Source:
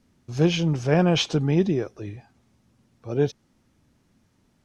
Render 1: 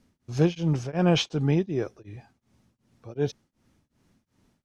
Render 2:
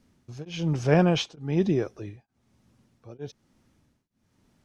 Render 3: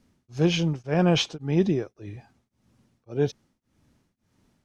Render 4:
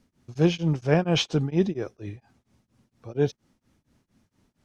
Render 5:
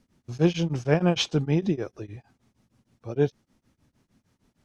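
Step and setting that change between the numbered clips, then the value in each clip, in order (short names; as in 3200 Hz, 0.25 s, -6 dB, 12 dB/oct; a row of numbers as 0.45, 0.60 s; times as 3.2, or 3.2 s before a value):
beating tremolo, nulls at: 2.7, 1.1, 1.8, 4.3, 6.5 Hz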